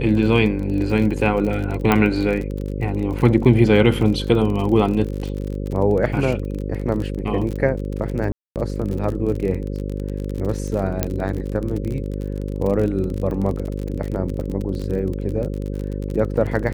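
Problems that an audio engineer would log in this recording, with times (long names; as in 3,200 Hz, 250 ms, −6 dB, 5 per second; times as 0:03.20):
mains buzz 50 Hz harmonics 11 −26 dBFS
surface crackle 37 per second −26 dBFS
0:01.92: click −4 dBFS
0:08.32–0:08.56: drop-out 238 ms
0:11.03: click −5 dBFS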